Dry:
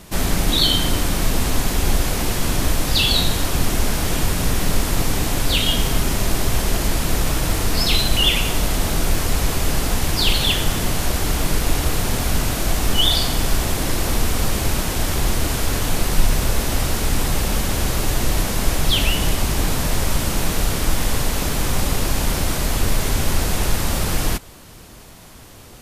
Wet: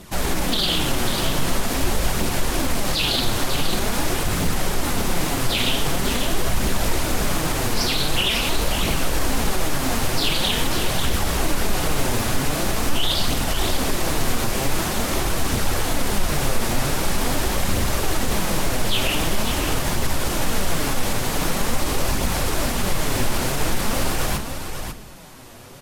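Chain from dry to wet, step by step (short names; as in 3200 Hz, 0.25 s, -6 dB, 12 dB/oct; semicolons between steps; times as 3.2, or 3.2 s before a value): tilt +2 dB/oct; reverb RT60 0.60 s, pre-delay 3 ms, DRR 10.5 dB; flange 0.45 Hz, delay 0.2 ms, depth 8.7 ms, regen +37%; high shelf 2000 Hz -10.5 dB; limiter -18 dBFS, peak gain reduction 9 dB; on a send: echo 0.544 s -7.5 dB; on the sum: Doppler distortion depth 0.56 ms; gain +7 dB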